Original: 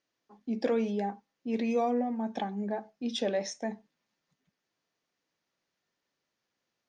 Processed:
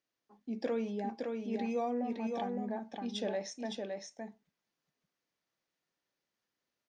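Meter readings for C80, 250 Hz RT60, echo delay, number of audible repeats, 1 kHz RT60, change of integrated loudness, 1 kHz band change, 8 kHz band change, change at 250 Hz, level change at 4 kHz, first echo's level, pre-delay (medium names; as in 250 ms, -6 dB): no reverb, no reverb, 563 ms, 1, no reverb, -5.0 dB, -4.5 dB, -4.5 dB, -4.5 dB, -4.5 dB, -4.0 dB, no reverb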